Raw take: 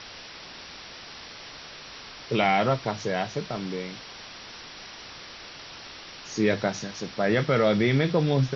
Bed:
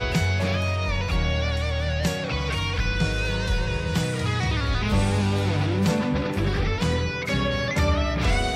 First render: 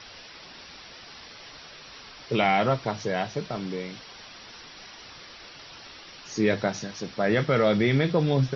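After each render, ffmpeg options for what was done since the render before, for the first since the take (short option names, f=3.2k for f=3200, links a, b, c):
-af "afftdn=nr=6:nf=-44"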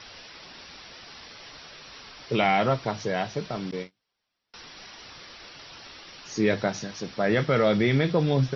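-filter_complex "[0:a]asettb=1/sr,asplit=3[a][b][c];[a]atrim=end=3.714[d];[b]atrim=start=3.71:end=4.54,asetpts=PTS-STARTPTS,afade=t=in:d=0.004:c=qsin,afade=t=out:st=0.826:d=0.004:c=qsin,agate=range=-37dB:threshold=-34dB:ratio=16:release=100:detection=peak[e];[c]atrim=start=4.536[f];[d][e]acrossfade=d=0.004:c1=hsin:c2=qsin[g];[g][f]acrossfade=d=0.004:c1=qsin:c2=hsin"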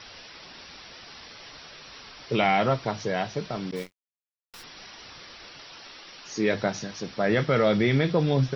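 -filter_complex "[0:a]asplit=3[a][b][c];[a]afade=t=out:st=3.75:d=0.02[d];[b]acrusher=bits=8:dc=4:mix=0:aa=0.000001,afade=t=in:st=3.75:d=0.02,afade=t=out:st=4.62:d=0.02[e];[c]afade=t=in:st=4.62:d=0.02[f];[d][e][f]amix=inputs=3:normalize=0,asettb=1/sr,asplit=3[g][h][i];[g]atrim=end=5.614[j];[h]atrim=start=5.61:end=6.55,asetpts=PTS-STARTPTS,afade=t=in:d=0.004:c=qsin,afade=t=out:st=0.936:d=0.004:c=qsin,equalizer=f=61:t=o:w=2.7:g=-9[k];[i]atrim=start=6.546[l];[j][k]acrossfade=d=0.004:c1=hsin:c2=qsin[m];[m][l]acrossfade=d=0.004:c1=qsin:c2=hsin"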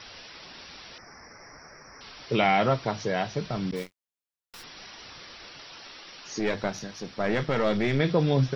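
-filter_complex "[0:a]asettb=1/sr,asplit=3[a][b][c];[a]atrim=end=0.984[d];[b]atrim=start=0.98:end=2.01,asetpts=PTS-STARTPTS,afade=t=in:d=0.004:c=qsin,afade=t=out:st=1.026:d=0.004:c=qsin,asuperstop=centerf=3400:order=8:qfactor=1.1[e];[c]atrim=start=2.006[f];[d][e]acrossfade=d=0.004:c1=hsin:c2=qsin[g];[g][f]acrossfade=d=0.004:c1=qsin:c2=hsin,asettb=1/sr,asplit=3[h][i][j];[h]atrim=end=3.244[k];[i]atrim=start=3.24:end=3.74,asetpts=PTS-STARTPTS,afade=t=in:d=0.004:c=qsin,afade=t=out:st=0.496:d=0.004:c=qsin,asubboost=boost=11.5:cutoff=240[l];[j]atrim=start=3.736[m];[k][l]acrossfade=d=0.004:c1=hsin:c2=qsin[n];[n][m]acrossfade=d=0.004:c1=qsin:c2=hsin,asettb=1/sr,asplit=3[o][p][q];[o]atrim=end=6.394[r];[p]atrim=start=6.39:end=8,asetpts=PTS-STARTPTS,afade=t=in:d=0.004:c=qsin,afade=t=out:st=1.606:d=0.004:c=qsin,aeval=exprs='(tanh(7.08*val(0)+0.6)-tanh(0.6))/7.08':c=same[s];[q]atrim=start=7.996[t];[r][s]acrossfade=d=0.004:c1=hsin:c2=qsin[u];[u][t]acrossfade=d=0.004:c1=qsin:c2=hsin"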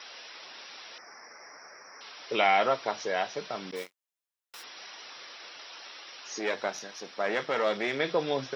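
-af "highpass=460,bandreject=f=4.5k:w=18"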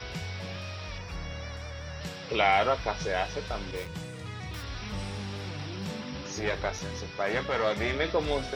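-filter_complex "[1:a]volume=-14.5dB[a];[0:a][a]amix=inputs=2:normalize=0"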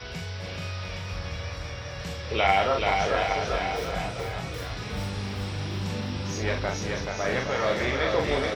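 -filter_complex "[0:a]asplit=2[a][b];[b]adelay=41,volume=-4dB[c];[a][c]amix=inputs=2:normalize=0,aecho=1:1:430|817|1165|1479|1761:0.631|0.398|0.251|0.158|0.1"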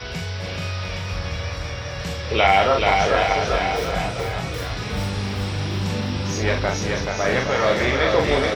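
-af "volume=6.5dB,alimiter=limit=-2dB:level=0:latency=1"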